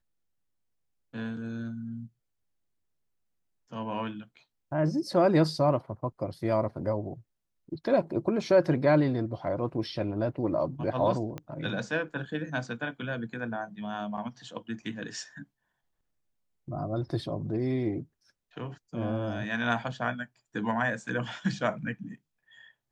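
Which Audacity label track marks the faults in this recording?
11.380000	11.380000	click −23 dBFS

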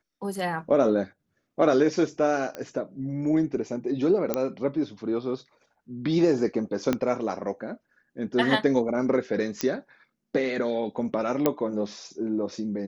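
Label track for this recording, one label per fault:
2.550000	2.550000	click −20 dBFS
4.340000	4.340000	click −10 dBFS
6.930000	6.930000	click −11 dBFS
9.610000	9.610000	click −11 dBFS
11.460000	11.460000	click −8 dBFS

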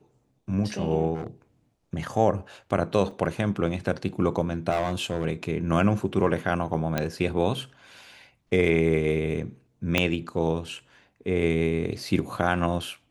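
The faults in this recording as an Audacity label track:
1.140000	1.270000	clipping −28 dBFS
3.110000	3.110000	drop-out 4.1 ms
4.700000	5.250000	clipping −20 dBFS
6.980000	6.980000	click −11 dBFS
9.980000	9.980000	click −7 dBFS

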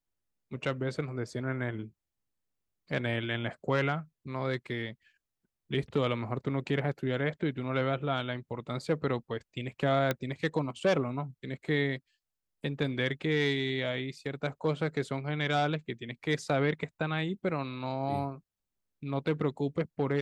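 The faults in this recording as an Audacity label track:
10.110000	10.110000	click −14 dBFS

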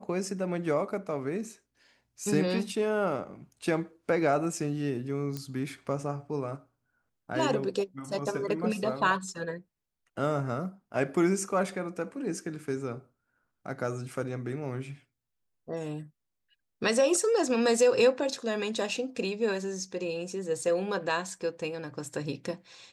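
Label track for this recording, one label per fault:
5.370000	5.370000	click −21 dBFS

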